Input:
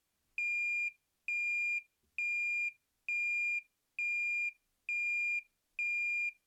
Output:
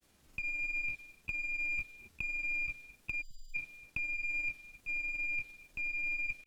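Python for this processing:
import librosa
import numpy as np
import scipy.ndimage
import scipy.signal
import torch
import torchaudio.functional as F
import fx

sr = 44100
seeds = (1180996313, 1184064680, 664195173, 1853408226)

p1 = fx.over_compress(x, sr, threshold_db=-44.0, ratio=-1.0)
p2 = p1 + fx.echo_single(p1, sr, ms=242, db=-16.0, dry=0)
p3 = fx.dynamic_eq(p2, sr, hz=3500.0, q=0.96, threshold_db=-58.0, ratio=4.0, max_db=5)
p4 = fx.granulator(p3, sr, seeds[0], grain_ms=100.0, per_s=20.0, spray_ms=27.0, spread_st=0)
p5 = fx.sample_hold(p4, sr, seeds[1], rate_hz=1200.0, jitter_pct=0)
p6 = p4 + (p5 * librosa.db_to_amplitude(-6.0))
p7 = fx.spec_erase(p6, sr, start_s=3.22, length_s=0.33, low_hz=250.0, high_hz=2900.0)
y = p7 * librosa.db_to_amplitude(5.0)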